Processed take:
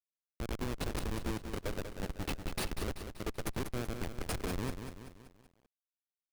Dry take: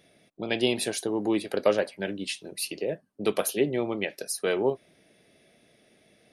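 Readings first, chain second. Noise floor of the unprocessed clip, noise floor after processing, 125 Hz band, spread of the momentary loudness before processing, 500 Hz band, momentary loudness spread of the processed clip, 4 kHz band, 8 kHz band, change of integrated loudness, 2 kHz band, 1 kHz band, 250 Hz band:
-65 dBFS, under -85 dBFS, +1.5 dB, 8 LU, -15.5 dB, 8 LU, -11.0 dB, -11.5 dB, -11.0 dB, -10.0 dB, -7.0 dB, -10.0 dB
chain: compression 6:1, threshold -35 dBFS, peak gain reduction 17.5 dB; Chebyshev shaper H 4 -33 dB, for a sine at -20.5 dBFS; Schmitt trigger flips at -33 dBFS; bit-crushed delay 191 ms, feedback 55%, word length 11-bit, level -7.5 dB; trim +6.5 dB

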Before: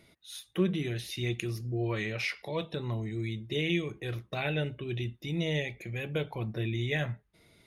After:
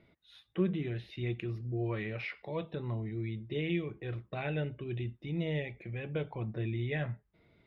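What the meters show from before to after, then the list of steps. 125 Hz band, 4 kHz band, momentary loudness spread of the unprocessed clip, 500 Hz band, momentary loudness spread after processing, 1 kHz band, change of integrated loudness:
-2.0 dB, -10.5 dB, 7 LU, -3.0 dB, 6 LU, -3.5 dB, -3.5 dB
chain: distance through air 380 m; trim -2 dB

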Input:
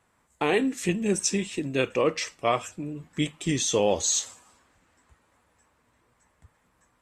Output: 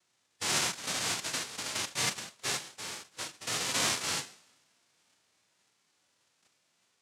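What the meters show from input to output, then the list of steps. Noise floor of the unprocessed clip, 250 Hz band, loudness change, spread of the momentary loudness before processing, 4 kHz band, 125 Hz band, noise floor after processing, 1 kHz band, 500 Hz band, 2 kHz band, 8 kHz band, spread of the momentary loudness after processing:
-69 dBFS, -18.0 dB, -5.5 dB, 8 LU, +1.0 dB, -13.0 dB, -75 dBFS, -7.0 dB, -18.0 dB, -2.0 dB, -3.5 dB, 12 LU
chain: noise-vocoded speech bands 1; harmonic-percussive split percussive -14 dB; trim -1.5 dB

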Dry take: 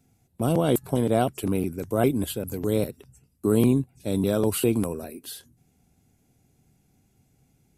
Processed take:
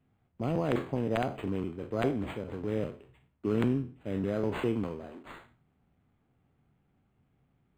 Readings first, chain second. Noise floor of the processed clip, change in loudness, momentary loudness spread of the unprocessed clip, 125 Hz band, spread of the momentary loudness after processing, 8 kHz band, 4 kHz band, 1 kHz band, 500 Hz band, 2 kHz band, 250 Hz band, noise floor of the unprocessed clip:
-73 dBFS, -7.5 dB, 11 LU, -7.5 dB, 13 LU, under -20 dB, -10.0 dB, -6.5 dB, -7.5 dB, -2.5 dB, -7.5 dB, -66 dBFS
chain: spectral sustain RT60 0.38 s; integer overflow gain 9 dB; decimation joined by straight lines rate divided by 8×; trim -8 dB

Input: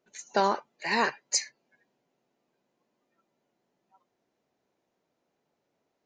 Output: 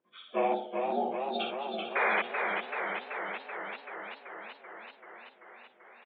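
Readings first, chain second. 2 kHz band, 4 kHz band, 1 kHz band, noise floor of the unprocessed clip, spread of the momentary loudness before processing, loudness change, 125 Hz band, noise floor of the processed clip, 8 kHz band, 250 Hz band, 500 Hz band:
+2.5 dB, -4.5 dB, 0.0 dB, -80 dBFS, 6 LU, -4.5 dB, no reading, -61 dBFS, under -40 dB, +0.5 dB, +2.5 dB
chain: frequency axis rescaled in octaves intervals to 80%; high-pass 51 Hz; tone controls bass -3 dB, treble -9 dB; on a send: multi-tap echo 60/118 ms -5.5/-11 dB; on the sum: painted sound noise, 1.95–2.22 s, 360–2500 Hz -25 dBFS; feedback delay 281 ms, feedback 59%, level -18.5 dB; time-frequency box 0.54–1.40 s, 910–3600 Hz -28 dB; modulated delay 385 ms, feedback 74%, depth 81 cents, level -4.5 dB; trim -2.5 dB

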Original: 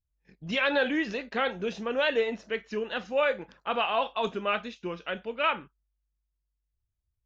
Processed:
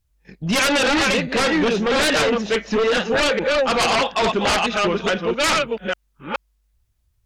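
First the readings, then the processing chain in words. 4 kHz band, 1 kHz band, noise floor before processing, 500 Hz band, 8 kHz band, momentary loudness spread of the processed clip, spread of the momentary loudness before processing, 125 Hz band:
+13.5 dB, +10.0 dB, -82 dBFS, +9.5 dB, no reading, 11 LU, 9 LU, +15.5 dB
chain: chunks repeated in reverse 424 ms, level -4 dB; sine folder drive 14 dB, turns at -11.5 dBFS; trim -3 dB

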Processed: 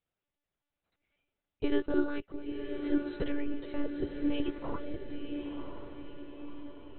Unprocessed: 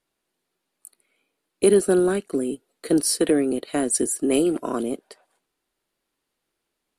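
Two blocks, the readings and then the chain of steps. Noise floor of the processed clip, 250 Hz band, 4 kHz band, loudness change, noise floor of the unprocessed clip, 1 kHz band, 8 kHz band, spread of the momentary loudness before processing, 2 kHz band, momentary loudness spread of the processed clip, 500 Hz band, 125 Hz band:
under -85 dBFS, -9.5 dB, -14.0 dB, -13.5 dB, -80 dBFS, -11.5 dB, under -40 dB, 11 LU, -8.0 dB, 14 LU, -15.0 dB, -11.0 dB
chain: chorus voices 2, 0.91 Hz, delay 11 ms, depth 3.6 ms; monotone LPC vocoder at 8 kHz 290 Hz; echo that smears into a reverb 1002 ms, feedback 50%, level -6 dB; trim -7.5 dB

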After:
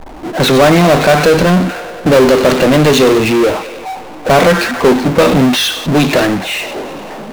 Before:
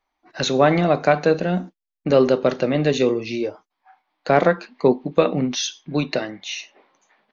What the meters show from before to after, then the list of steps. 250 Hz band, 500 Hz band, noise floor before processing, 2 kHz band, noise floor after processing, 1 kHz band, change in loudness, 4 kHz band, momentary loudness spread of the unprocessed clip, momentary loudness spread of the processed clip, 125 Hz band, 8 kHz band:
+11.5 dB, +9.0 dB, -81 dBFS, +13.0 dB, -29 dBFS, +10.0 dB, +10.0 dB, +13.0 dB, 12 LU, 14 LU, +11.5 dB, no reading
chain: feedback echo behind a high-pass 97 ms, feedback 70%, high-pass 2.3 kHz, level -14 dB; level-controlled noise filter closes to 450 Hz, open at -13.5 dBFS; power-law waveshaper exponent 0.35; trim +2 dB

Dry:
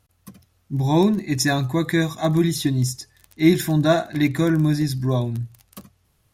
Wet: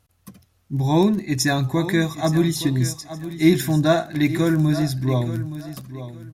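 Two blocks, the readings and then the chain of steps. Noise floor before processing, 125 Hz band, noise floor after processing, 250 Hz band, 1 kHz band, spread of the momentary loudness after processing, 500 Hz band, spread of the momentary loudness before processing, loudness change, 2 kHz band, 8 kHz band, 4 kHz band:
-65 dBFS, +0.5 dB, -64 dBFS, 0.0 dB, 0.0 dB, 14 LU, 0.0 dB, 8 LU, 0.0 dB, 0.0 dB, 0.0 dB, 0.0 dB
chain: feedback delay 869 ms, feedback 23%, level -13 dB

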